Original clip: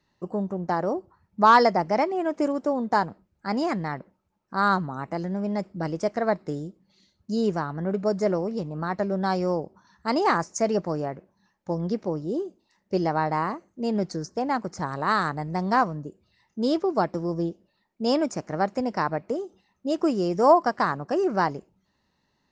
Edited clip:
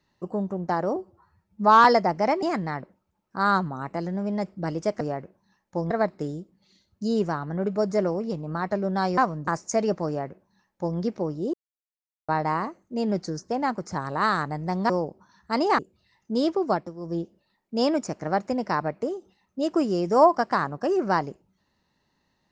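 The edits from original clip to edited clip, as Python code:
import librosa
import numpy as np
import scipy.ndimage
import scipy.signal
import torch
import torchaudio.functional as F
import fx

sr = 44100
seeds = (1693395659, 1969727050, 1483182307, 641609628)

y = fx.edit(x, sr, fx.stretch_span(start_s=0.96, length_s=0.59, factor=1.5),
    fx.cut(start_s=2.13, length_s=1.47),
    fx.swap(start_s=9.45, length_s=0.89, other_s=15.76, other_length_s=0.3),
    fx.duplicate(start_s=10.94, length_s=0.9, to_s=6.18),
    fx.silence(start_s=12.4, length_s=0.75),
    fx.fade_down_up(start_s=16.97, length_s=0.52, db=-12.5, fade_s=0.25), tone=tone)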